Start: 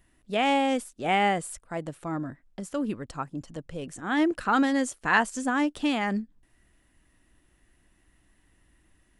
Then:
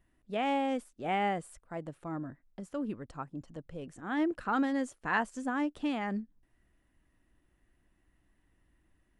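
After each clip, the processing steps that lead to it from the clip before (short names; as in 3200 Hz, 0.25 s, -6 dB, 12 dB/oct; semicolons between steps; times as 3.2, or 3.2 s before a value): high shelf 2800 Hz -9.5 dB; gain -6 dB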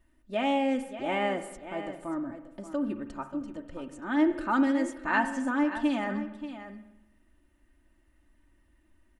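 comb 3.3 ms, depth 72%; echo 0.583 s -12 dB; on a send at -10 dB: reverb RT60 0.95 s, pre-delay 42 ms; on the sum: gain +1.5 dB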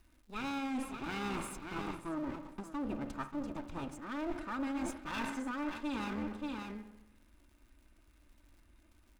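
minimum comb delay 0.79 ms; reverse; compressor 8:1, threshold -37 dBFS, peak gain reduction 15.5 dB; reverse; crackle 150/s -59 dBFS; gain +2 dB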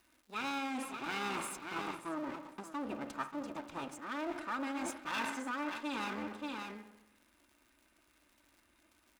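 HPF 530 Hz 6 dB/oct; gain +3.5 dB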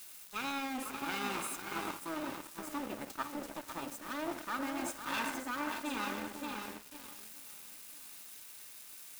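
switching spikes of -39.5 dBFS; echo with dull and thin repeats by turns 0.5 s, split 1900 Hz, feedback 55%, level -6.5 dB; crossover distortion -46 dBFS; gain +2.5 dB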